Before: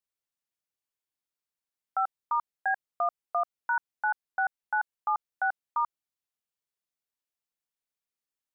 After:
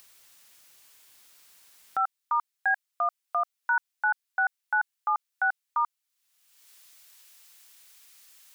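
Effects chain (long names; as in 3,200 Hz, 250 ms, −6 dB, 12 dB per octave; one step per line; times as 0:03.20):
tilt shelving filter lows −5 dB, about 870 Hz, from 0:01.99 lows −9.5 dB
upward compression, threshold −33 dBFS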